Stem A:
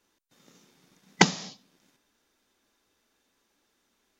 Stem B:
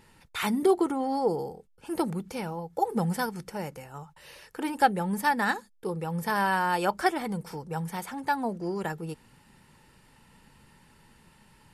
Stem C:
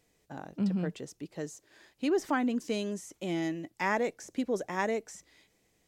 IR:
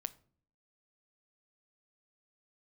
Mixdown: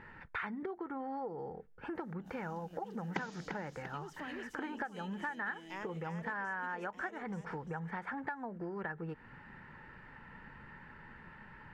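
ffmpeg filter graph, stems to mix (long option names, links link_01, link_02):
-filter_complex "[0:a]acrossover=split=2600[link_01][link_02];[link_02]acompressor=threshold=-46dB:ratio=4:attack=1:release=60[link_03];[link_01][link_03]amix=inputs=2:normalize=0,highshelf=frequency=7200:gain=8.5,adelay=1950,volume=-7dB,asplit=2[link_04][link_05];[link_05]volume=-10.5dB[link_06];[1:a]acompressor=threshold=-34dB:ratio=10,lowpass=frequency=1700:width_type=q:width=3.1,volume=1.5dB,asplit=3[link_07][link_08][link_09];[link_08]volume=-17dB[link_10];[2:a]equalizer=frequency=3000:width_type=o:width=0.27:gain=12.5,adelay=1900,volume=-11.5dB,asplit=3[link_11][link_12][link_13];[link_12]volume=-12dB[link_14];[link_13]volume=-5dB[link_15];[link_09]apad=whole_len=342682[link_16];[link_11][link_16]sidechaincompress=threshold=-49dB:ratio=8:attack=16:release=153[link_17];[3:a]atrim=start_sample=2205[link_18];[link_10][link_14]amix=inputs=2:normalize=0[link_19];[link_19][link_18]afir=irnorm=-1:irlink=0[link_20];[link_06][link_15]amix=inputs=2:normalize=0,aecho=0:1:344|688|1032|1376|1720|2064:1|0.4|0.16|0.064|0.0256|0.0102[link_21];[link_04][link_07][link_17][link_20][link_21]amix=inputs=5:normalize=0,acompressor=threshold=-43dB:ratio=2"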